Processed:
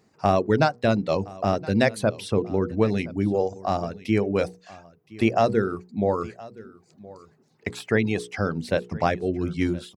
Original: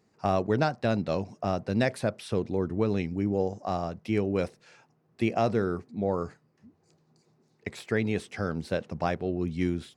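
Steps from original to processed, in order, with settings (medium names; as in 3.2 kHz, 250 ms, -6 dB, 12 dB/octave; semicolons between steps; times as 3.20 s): reverb removal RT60 0.8 s; hum notches 60/120/180/240/300/360/420/480 Hz; delay 1019 ms -20.5 dB; trim +6.5 dB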